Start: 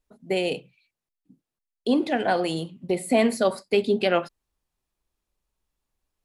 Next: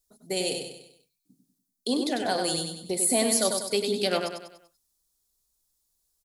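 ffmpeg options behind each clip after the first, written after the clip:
ffmpeg -i in.wav -af "aexciter=amount=7.3:drive=3.9:freq=3800,aecho=1:1:97|194|291|388|485:0.531|0.234|0.103|0.0452|0.0199,volume=-6dB" out.wav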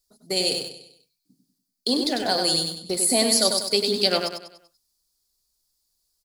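ffmpeg -i in.wav -filter_complex "[0:a]equalizer=frequency=4700:width_type=o:width=0.4:gain=10.5,asplit=2[link_01][link_02];[link_02]aeval=exprs='val(0)*gte(abs(val(0)),0.0316)':channel_layout=same,volume=-10dB[link_03];[link_01][link_03]amix=inputs=2:normalize=0" out.wav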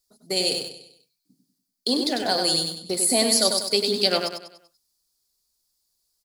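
ffmpeg -i in.wav -af "lowshelf=frequency=63:gain=-8" out.wav

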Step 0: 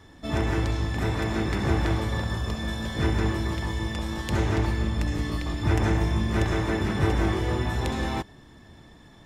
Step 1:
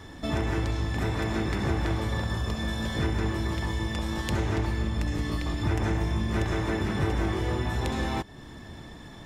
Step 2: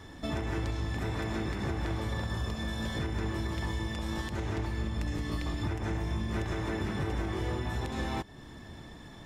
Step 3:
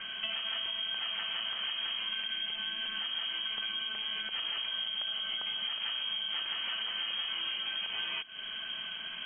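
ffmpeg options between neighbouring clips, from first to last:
ffmpeg -i in.wav -af "acompressor=threshold=-38dB:ratio=2,volume=6.5dB" out.wav
ffmpeg -i in.wav -af "alimiter=limit=-20dB:level=0:latency=1:release=144,volume=-3.5dB" out.wav
ffmpeg -i in.wav -af "crystalizer=i=3.5:c=0,acompressor=threshold=-39dB:ratio=12,lowpass=frequency=2800:width_type=q:width=0.5098,lowpass=frequency=2800:width_type=q:width=0.6013,lowpass=frequency=2800:width_type=q:width=0.9,lowpass=frequency=2800:width_type=q:width=2.563,afreqshift=-3300,volume=7dB" out.wav

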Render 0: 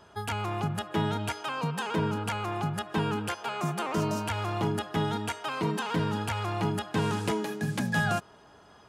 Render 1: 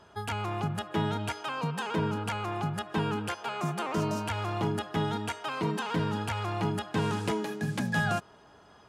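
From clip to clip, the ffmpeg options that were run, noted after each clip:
ffmpeg -i in.wav -af "highshelf=frequency=9600:gain=-5,volume=-1dB" out.wav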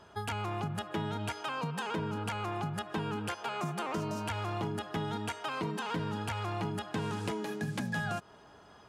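ffmpeg -i in.wav -af "acompressor=threshold=-32dB:ratio=4" out.wav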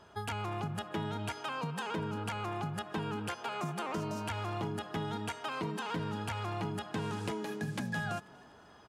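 ffmpeg -i in.wav -filter_complex "[0:a]asplit=4[link_01][link_02][link_03][link_04];[link_02]adelay=243,afreqshift=34,volume=-24dB[link_05];[link_03]adelay=486,afreqshift=68,volume=-29.4dB[link_06];[link_04]adelay=729,afreqshift=102,volume=-34.7dB[link_07];[link_01][link_05][link_06][link_07]amix=inputs=4:normalize=0,volume=-1.5dB" out.wav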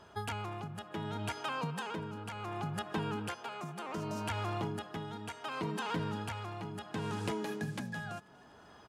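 ffmpeg -i in.wav -af "tremolo=f=0.68:d=0.55,volume=1dB" out.wav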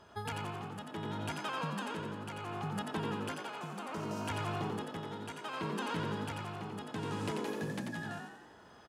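ffmpeg -i in.wav -filter_complex "[0:a]asplit=8[link_01][link_02][link_03][link_04][link_05][link_06][link_07][link_08];[link_02]adelay=89,afreqshift=50,volume=-4.5dB[link_09];[link_03]adelay=178,afreqshift=100,volume=-10dB[link_10];[link_04]adelay=267,afreqshift=150,volume=-15.5dB[link_11];[link_05]adelay=356,afreqshift=200,volume=-21dB[link_12];[link_06]adelay=445,afreqshift=250,volume=-26.6dB[link_13];[link_07]adelay=534,afreqshift=300,volume=-32.1dB[link_14];[link_08]adelay=623,afreqshift=350,volume=-37.6dB[link_15];[link_01][link_09][link_10][link_11][link_12][link_13][link_14][link_15]amix=inputs=8:normalize=0,volume=-2dB" out.wav

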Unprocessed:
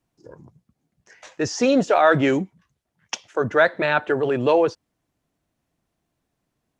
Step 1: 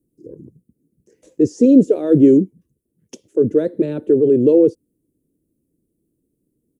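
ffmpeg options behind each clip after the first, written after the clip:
ffmpeg -i in.wav -af "firequalizer=gain_entry='entry(100,0);entry(310,10);entry(480,4);entry(720,-23);entry(1400,-28);entry(2800,-21);entry(5600,-15);entry(9300,3)':delay=0.05:min_phase=1,volume=2.5dB" out.wav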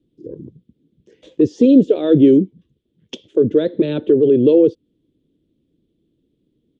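ffmpeg -i in.wav -filter_complex "[0:a]asplit=2[link_01][link_02];[link_02]acompressor=threshold=-20dB:ratio=6,volume=2dB[link_03];[link_01][link_03]amix=inputs=2:normalize=0,lowpass=frequency=3400:width_type=q:width=6.4,volume=-2.5dB" out.wav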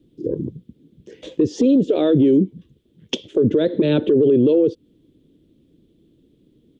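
ffmpeg -i in.wav -af "acompressor=threshold=-15dB:ratio=6,alimiter=level_in=16.5dB:limit=-1dB:release=50:level=0:latency=1,volume=-7.5dB" out.wav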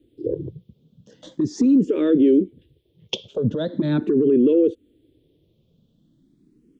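ffmpeg -i in.wav -filter_complex "[0:a]asplit=2[link_01][link_02];[link_02]afreqshift=0.41[link_03];[link_01][link_03]amix=inputs=2:normalize=1" out.wav

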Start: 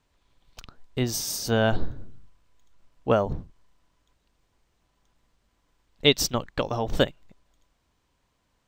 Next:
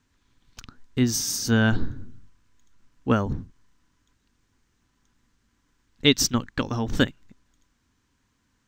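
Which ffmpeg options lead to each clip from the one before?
ffmpeg -i in.wav -af "equalizer=frequency=100:width_type=o:width=0.67:gain=6,equalizer=frequency=250:width_type=o:width=0.67:gain=9,equalizer=frequency=630:width_type=o:width=0.67:gain=-9,equalizer=frequency=1600:width_type=o:width=0.67:gain=6,equalizer=frequency=6300:width_type=o:width=0.67:gain=6,volume=-1dB" out.wav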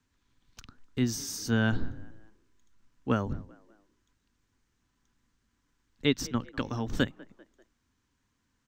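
ffmpeg -i in.wav -filter_complex "[0:a]acrossover=split=130|2600[link_01][link_02][link_03];[link_02]asplit=4[link_04][link_05][link_06][link_07];[link_05]adelay=196,afreqshift=33,volume=-21.5dB[link_08];[link_06]adelay=392,afreqshift=66,volume=-28.2dB[link_09];[link_07]adelay=588,afreqshift=99,volume=-35dB[link_10];[link_04][link_08][link_09][link_10]amix=inputs=4:normalize=0[link_11];[link_03]alimiter=limit=-21dB:level=0:latency=1:release=431[link_12];[link_01][link_11][link_12]amix=inputs=3:normalize=0,volume=-6dB" out.wav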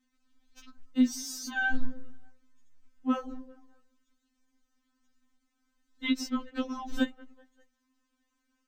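ffmpeg -i in.wav -af "afftfilt=real='re*3.46*eq(mod(b,12),0)':imag='im*3.46*eq(mod(b,12),0)':win_size=2048:overlap=0.75" out.wav

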